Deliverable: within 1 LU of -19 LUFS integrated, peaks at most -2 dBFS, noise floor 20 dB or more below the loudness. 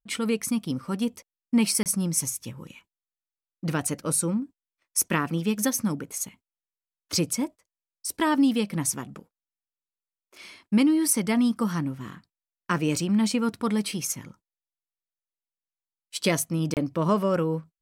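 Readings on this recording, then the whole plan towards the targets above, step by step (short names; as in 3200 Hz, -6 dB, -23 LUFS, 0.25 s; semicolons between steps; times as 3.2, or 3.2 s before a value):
dropouts 2; longest dropout 28 ms; loudness -26.0 LUFS; peak -9.5 dBFS; loudness target -19.0 LUFS
-> interpolate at 1.83/16.74, 28 ms; gain +7 dB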